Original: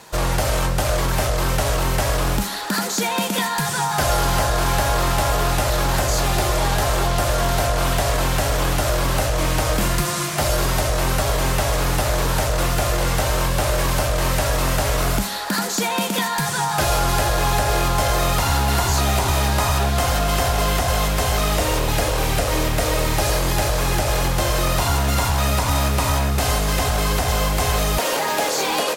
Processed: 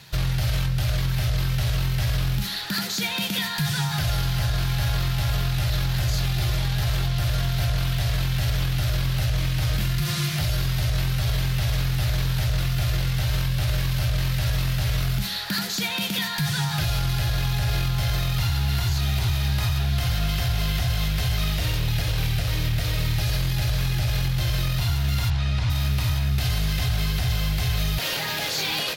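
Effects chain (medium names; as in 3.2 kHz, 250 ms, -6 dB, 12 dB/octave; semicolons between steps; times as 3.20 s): graphic EQ 125/250/500/1000/4000/8000 Hz +11/-9/-10/-11/+5/-11 dB; peak limiter -15.5 dBFS, peak gain reduction 8.5 dB; 25.30–25.70 s: distance through air 92 m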